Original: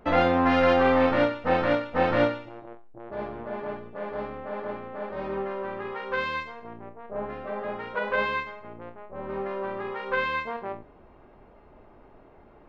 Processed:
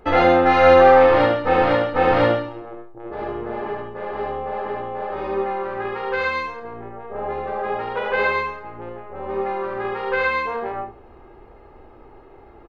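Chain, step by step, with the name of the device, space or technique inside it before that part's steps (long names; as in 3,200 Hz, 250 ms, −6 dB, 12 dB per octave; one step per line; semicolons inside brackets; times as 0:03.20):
microphone above a desk (comb filter 2.4 ms, depth 51%; convolution reverb RT60 0.30 s, pre-delay 69 ms, DRR 1.5 dB)
level +3.5 dB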